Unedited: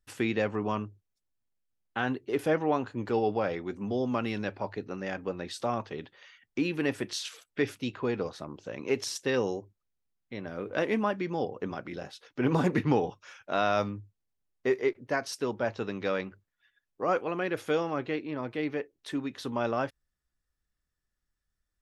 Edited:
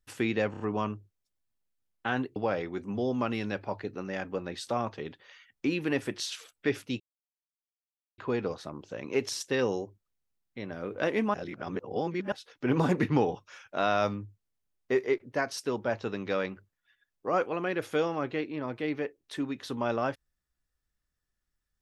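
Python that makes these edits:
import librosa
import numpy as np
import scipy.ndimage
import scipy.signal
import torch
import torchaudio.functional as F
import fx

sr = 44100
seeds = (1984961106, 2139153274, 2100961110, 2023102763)

y = fx.edit(x, sr, fx.stutter(start_s=0.51, slice_s=0.03, count=4),
    fx.cut(start_s=2.27, length_s=1.02),
    fx.insert_silence(at_s=7.93, length_s=1.18),
    fx.reverse_span(start_s=11.09, length_s=0.98), tone=tone)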